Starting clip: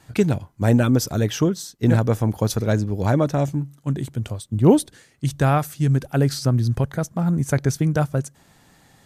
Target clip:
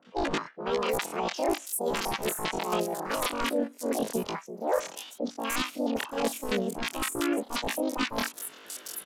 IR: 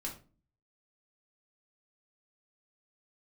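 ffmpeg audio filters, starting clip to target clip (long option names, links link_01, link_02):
-filter_complex "[0:a]highpass=270,highshelf=frequency=2900:gain=-6,areverse,acompressor=threshold=-35dB:ratio=10,areverse,aeval=exprs='(mod(23.7*val(0)+1,2)-1)/23.7':channel_layout=same,aresample=16000,aresample=44100,asplit=4[link_01][link_02][link_03][link_04];[link_02]asetrate=35002,aresample=44100,atempo=1.25992,volume=-17dB[link_05];[link_03]asetrate=37084,aresample=44100,atempo=1.18921,volume=0dB[link_06];[link_04]asetrate=52444,aresample=44100,atempo=0.840896,volume=-16dB[link_07];[link_01][link_05][link_06][link_07]amix=inputs=4:normalize=0,acrossover=split=480|3000[link_08][link_09][link_10];[link_09]adelay=50[link_11];[link_10]adelay=740[link_12];[link_08][link_11][link_12]amix=inputs=3:normalize=0,asetrate=88200,aresample=44100,atempo=0.5,volume=8dB"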